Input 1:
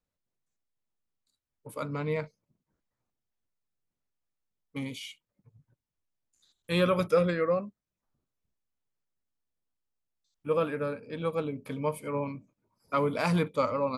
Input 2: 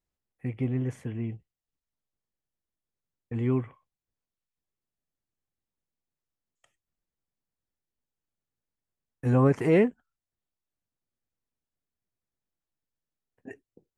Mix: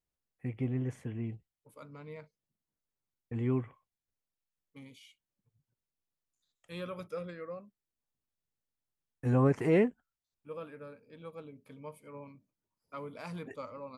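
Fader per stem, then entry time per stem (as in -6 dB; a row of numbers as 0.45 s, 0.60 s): -15.5 dB, -4.5 dB; 0.00 s, 0.00 s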